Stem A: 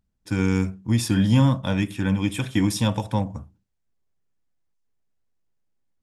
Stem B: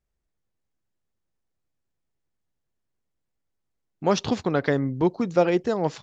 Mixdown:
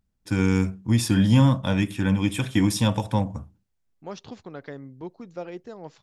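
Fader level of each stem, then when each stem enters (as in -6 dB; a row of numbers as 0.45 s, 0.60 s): +0.5 dB, -15.5 dB; 0.00 s, 0.00 s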